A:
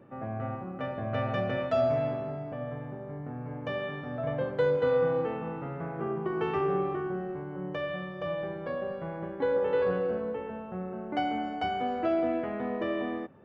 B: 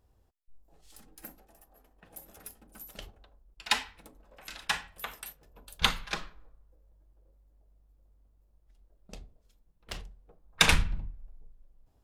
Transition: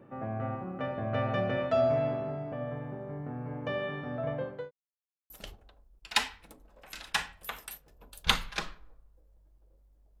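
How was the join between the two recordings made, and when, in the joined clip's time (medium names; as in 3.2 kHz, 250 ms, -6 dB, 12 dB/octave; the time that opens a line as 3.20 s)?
A
4.01–4.71 s: fade out equal-power
4.71–5.30 s: mute
5.30 s: go over to B from 2.85 s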